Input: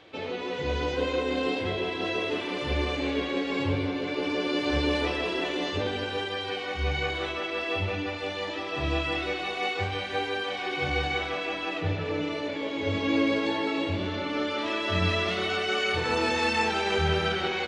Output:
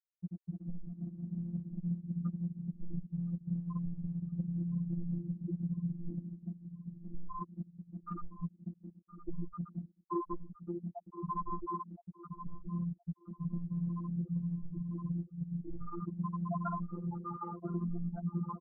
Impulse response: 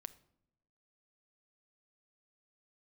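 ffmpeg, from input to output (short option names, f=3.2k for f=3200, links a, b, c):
-af "asetrate=22050,aresample=44100,atempo=2,equalizer=f=1.9k:t=o:w=0.3:g=-5.5,afftfilt=real='re*gte(hypot(re,im),0.251)':imag='im*gte(hypot(re,im),0.251)':win_size=1024:overlap=0.75,lowpass=3.1k,aemphasis=mode=reproduction:type=75fm,aecho=1:1:967|1934|2901:0.141|0.0452|0.0145,asetrate=41895,aresample=44100,acompressor=threshold=-37dB:ratio=10,afftfilt=real='hypot(re,im)*cos(PI*b)':imag='0':win_size=1024:overlap=0.75,volume=7dB"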